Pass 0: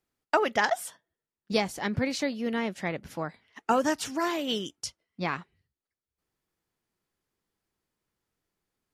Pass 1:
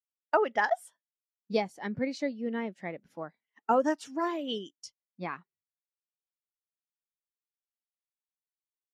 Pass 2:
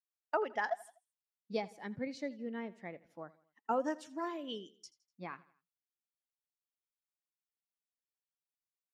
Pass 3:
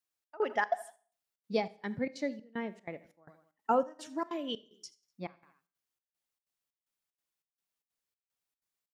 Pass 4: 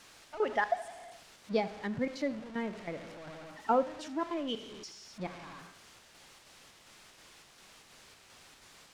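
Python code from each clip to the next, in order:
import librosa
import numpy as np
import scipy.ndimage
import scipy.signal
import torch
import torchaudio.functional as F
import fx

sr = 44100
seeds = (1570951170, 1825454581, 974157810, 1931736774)

y1 = fx.peak_eq(x, sr, hz=74.0, db=-14.0, octaves=1.4)
y1 = fx.spectral_expand(y1, sr, expansion=1.5)
y1 = F.gain(torch.from_numpy(y1), -2.0).numpy()
y2 = fx.echo_feedback(y1, sr, ms=82, feedback_pct=45, wet_db=-20.0)
y2 = F.gain(torch.from_numpy(y2), -8.0).numpy()
y3 = fx.step_gate(y2, sr, bpm=188, pattern='xxx..xxx.', floor_db=-24.0, edge_ms=4.5)
y3 = fx.rev_schroeder(y3, sr, rt60_s=0.47, comb_ms=29, drr_db=18.0)
y3 = F.gain(torch.from_numpy(y3), 5.5).numpy()
y4 = y3 + 0.5 * 10.0 ** (-41.5 / 20.0) * np.sign(y3)
y4 = fx.air_absorb(y4, sr, metres=72.0)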